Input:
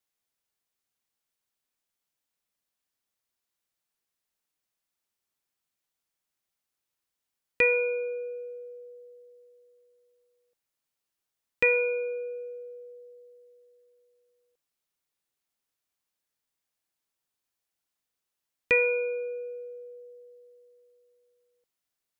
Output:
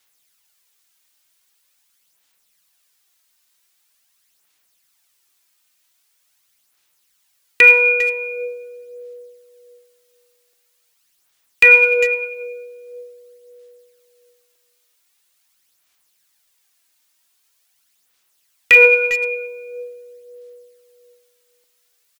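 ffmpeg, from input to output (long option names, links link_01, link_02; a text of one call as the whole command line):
ffmpeg -i in.wav -filter_complex "[0:a]tiltshelf=frequency=970:gain=-7,aphaser=in_gain=1:out_gain=1:delay=3.3:decay=0.45:speed=0.44:type=sinusoidal,asplit=2[link_01][link_02];[link_02]adelay=400,highpass=300,lowpass=3400,asoftclip=type=hard:threshold=-14dB,volume=-15dB[link_03];[link_01][link_03]amix=inputs=2:normalize=0,apsyclip=15.5dB,volume=-2dB" out.wav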